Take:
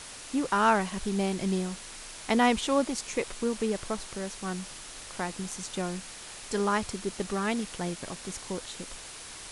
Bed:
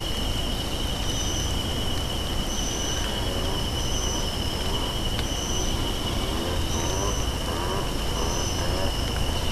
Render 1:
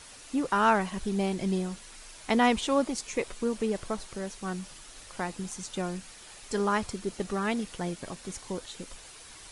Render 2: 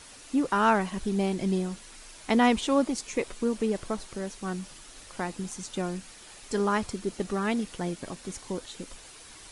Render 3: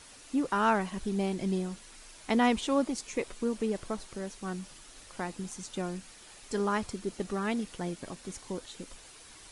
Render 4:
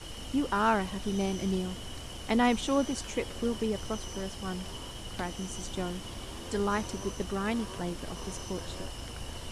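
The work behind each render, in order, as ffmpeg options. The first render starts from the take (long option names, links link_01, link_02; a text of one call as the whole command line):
ffmpeg -i in.wav -af "afftdn=noise_reduction=7:noise_floor=-44" out.wav
ffmpeg -i in.wav -af "equalizer=frequency=280:width_type=o:width=1:gain=3.5" out.wav
ffmpeg -i in.wav -af "volume=-3.5dB" out.wav
ffmpeg -i in.wav -i bed.wav -filter_complex "[1:a]volume=-15dB[link_01];[0:a][link_01]amix=inputs=2:normalize=0" out.wav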